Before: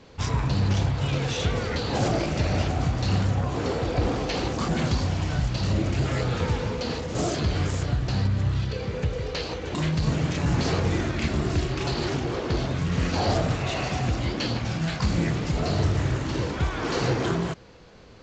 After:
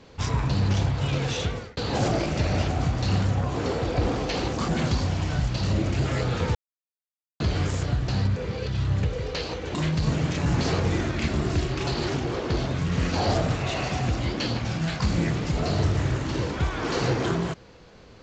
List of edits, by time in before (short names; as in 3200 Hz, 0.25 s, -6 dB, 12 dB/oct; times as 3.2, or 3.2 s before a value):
1.36–1.77 fade out
6.55–7.4 mute
8.36–9.03 reverse